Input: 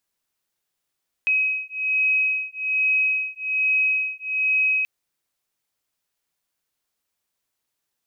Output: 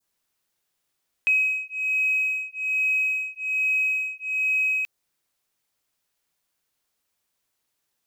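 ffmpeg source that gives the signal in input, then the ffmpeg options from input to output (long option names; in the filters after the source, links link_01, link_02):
-f lavfi -i "aevalsrc='0.075*(sin(2*PI*2540*t)+sin(2*PI*2541.2*t))':duration=3.58:sample_rate=44100"
-filter_complex "[0:a]asplit=2[link_01][link_02];[link_02]asoftclip=type=tanh:threshold=-32.5dB,volume=-9.5dB[link_03];[link_01][link_03]amix=inputs=2:normalize=0,adynamicequalizer=threshold=0.0224:dfrequency=2200:dqfactor=0.98:tfrequency=2200:tqfactor=0.98:attack=5:release=100:ratio=0.375:range=2.5:mode=cutabove:tftype=bell"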